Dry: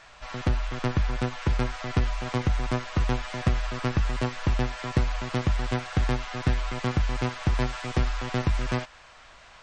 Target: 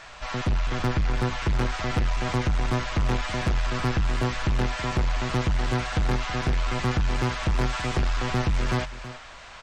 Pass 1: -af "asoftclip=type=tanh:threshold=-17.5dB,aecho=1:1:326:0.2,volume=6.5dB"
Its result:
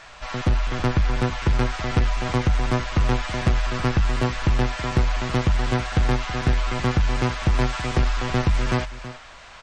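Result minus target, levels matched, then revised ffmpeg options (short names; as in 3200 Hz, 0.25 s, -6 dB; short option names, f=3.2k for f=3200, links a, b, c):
soft clip: distortion -8 dB
-af "asoftclip=type=tanh:threshold=-25.5dB,aecho=1:1:326:0.2,volume=6.5dB"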